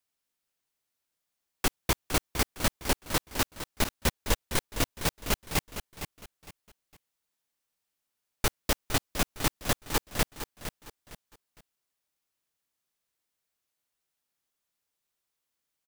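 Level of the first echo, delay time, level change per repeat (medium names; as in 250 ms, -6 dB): -10.5 dB, 459 ms, -10.5 dB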